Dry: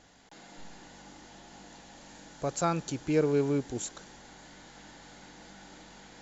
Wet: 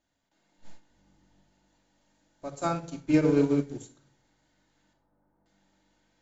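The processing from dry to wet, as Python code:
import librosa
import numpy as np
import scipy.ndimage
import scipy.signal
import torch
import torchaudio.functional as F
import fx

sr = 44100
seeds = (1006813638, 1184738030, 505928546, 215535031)

y = fx.low_shelf(x, sr, hz=220.0, db=11.5, at=(0.9, 1.41))
y = fx.lowpass(y, sr, hz=1200.0, slope=24, at=(4.93, 5.46))
y = fx.room_shoebox(y, sr, seeds[0], volume_m3=2200.0, walls='furnished', distance_m=2.7)
y = fx.upward_expand(y, sr, threshold_db=-37.0, expansion=2.5)
y = F.gain(torch.from_numpy(y), 3.0).numpy()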